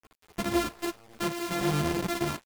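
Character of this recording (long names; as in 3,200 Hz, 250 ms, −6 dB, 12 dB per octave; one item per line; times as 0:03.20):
a buzz of ramps at a fixed pitch in blocks of 128 samples
chopped level 9.3 Hz, duty 90%
a quantiser's noise floor 8 bits, dither none
a shimmering, thickened sound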